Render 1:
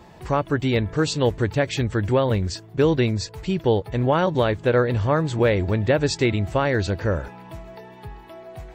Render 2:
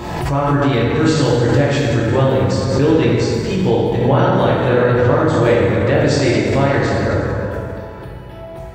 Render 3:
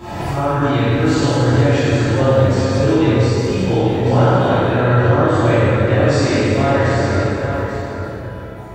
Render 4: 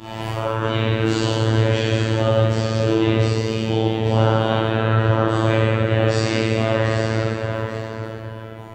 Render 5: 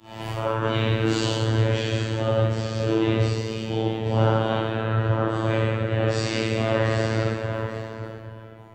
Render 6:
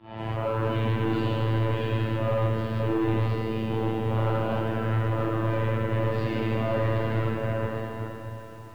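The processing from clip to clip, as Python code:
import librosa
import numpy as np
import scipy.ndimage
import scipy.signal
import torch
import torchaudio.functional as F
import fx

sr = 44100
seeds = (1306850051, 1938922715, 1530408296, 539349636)

y1 = fx.rev_plate(x, sr, seeds[0], rt60_s=2.7, hf_ratio=0.55, predelay_ms=0, drr_db=-7.5)
y1 = fx.pre_swell(y1, sr, db_per_s=36.0)
y1 = F.gain(torch.from_numpy(y1), -2.5).numpy()
y2 = y1 + 10.0 ** (-9.0 / 20.0) * np.pad(y1, (int(838 * sr / 1000.0), 0))[:len(y1)]
y2 = fx.rev_plate(y2, sr, seeds[1], rt60_s=1.3, hf_ratio=0.85, predelay_ms=0, drr_db=-10.0)
y2 = F.gain(torch.from_numpy(y2), -11.0).numpy()
y3 = fx.peak_eq(y2, sr, hz=3000.0, db=9.5, octaves=0.54)
y3 = fx.robotise(y3, sr, hz=111.0)
y3 = F.gain(torch.from_numpy(y3), -3.0).numpy()
y4 = fx.rider(y3, sr, range_db=4, speed_s=2.0)
y4 = fx.band_widen(y4, sr, depth_pct=70)
y4 = F.gain(torch.from_numpy(y4), -4.0).numpy()
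y5 = np.clip(y4, -10.0 ** (-22.5 / 20.0), 10.0 ** (-22.5 / 20.0))
y5 = fx.air_absorb(y5, sr, metres=430.0)
y5 = fx.echo_crushed(y5, sr, ms=157, feedback_pct=80, bits=9, wet_db=-10.5)
y5 = F.gain(torch.from_numpy(y5), 1.5).numpy()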